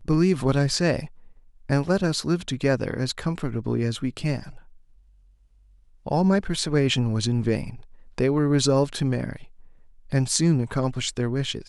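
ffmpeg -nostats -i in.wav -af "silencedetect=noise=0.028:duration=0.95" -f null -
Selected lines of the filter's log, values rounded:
silence_start: 4.49
silence_end: 6.07 | silence_duration: 1.58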